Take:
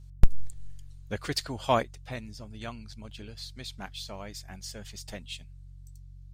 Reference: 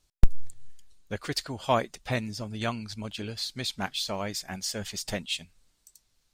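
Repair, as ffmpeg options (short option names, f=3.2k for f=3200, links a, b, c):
-af "bandreject=f=46.2:t=h:w=4,bandreject=f=92.4:t=h:w=4,bandreject=f=138.6:t=h:w=4,asetnsamples=n=441:p=0,asendcmd='1.83 volume volume 9dB',volume=0dB"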